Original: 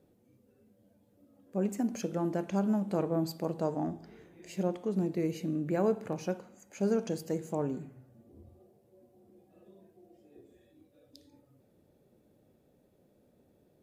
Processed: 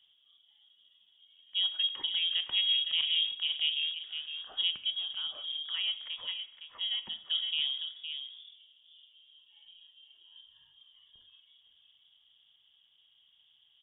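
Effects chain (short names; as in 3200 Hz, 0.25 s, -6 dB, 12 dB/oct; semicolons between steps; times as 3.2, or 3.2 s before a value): outdoor echo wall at 88 m, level -8 dB; inverted band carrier 3500 Hz; 4.9–7.31 air absorption 300 m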